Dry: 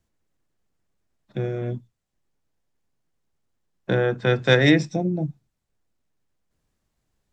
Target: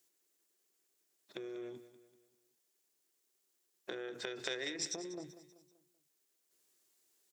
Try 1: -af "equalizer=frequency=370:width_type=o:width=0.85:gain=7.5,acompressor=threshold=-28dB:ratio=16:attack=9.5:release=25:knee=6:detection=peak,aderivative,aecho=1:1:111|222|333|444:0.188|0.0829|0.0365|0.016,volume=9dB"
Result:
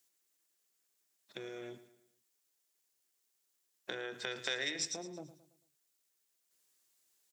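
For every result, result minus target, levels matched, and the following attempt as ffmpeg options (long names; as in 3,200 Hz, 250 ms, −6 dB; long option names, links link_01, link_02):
echo 81 ms early; 500 Hz band −3.5 dB
-af "equalizer=frequency=370:width_type=o:width=0.85:gain=7.5,acompressor=threshold=-28dB:ratio=16:attack=9.5:release=25:knee=6:detection=peak,aderivative,aecho=1:1:192|384|576|768:0.188|0.0829|0.0365|0.016,volume=9dB"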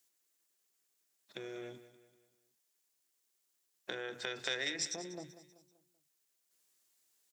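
500 Hz band −3.0 dB
-af "equalizer=frequency=370:width_type=o:width=0.85:gain=17,acompressor=threshold=-28dB:ratio=16:attack=9.5:release=25:knee=6:detection=peak,aderivative,aecho=1:1:192|384|576|768:0.188|0.0829|0.0365|0.016,volume=9dB"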